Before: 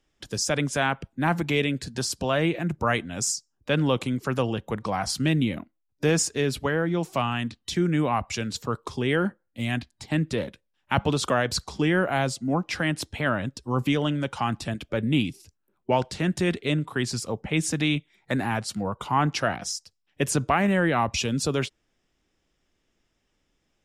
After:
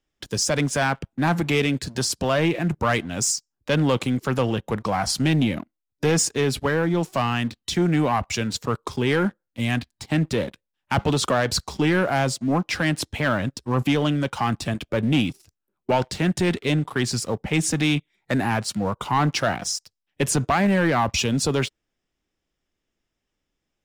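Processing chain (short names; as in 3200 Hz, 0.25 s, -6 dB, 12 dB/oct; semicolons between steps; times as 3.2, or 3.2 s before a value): sample leveller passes 2; gain -3 dB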